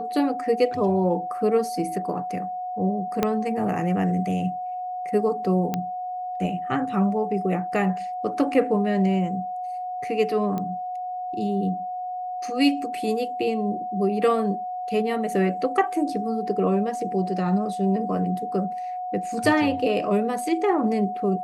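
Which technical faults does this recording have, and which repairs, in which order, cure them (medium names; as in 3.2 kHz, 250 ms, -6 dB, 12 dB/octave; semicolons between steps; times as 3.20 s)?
whine 730 Hz -28 dBFS
3.23 s: pop -8 dBFS
5.74 s: pop -12 dBFS
10.58 s: pop -17 dBFS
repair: de-click; band-stop 730 Hz, Q 30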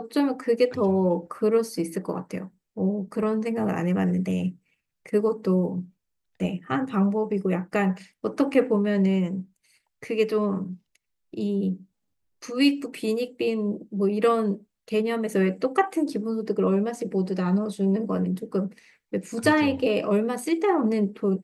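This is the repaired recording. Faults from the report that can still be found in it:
3.23 s: pop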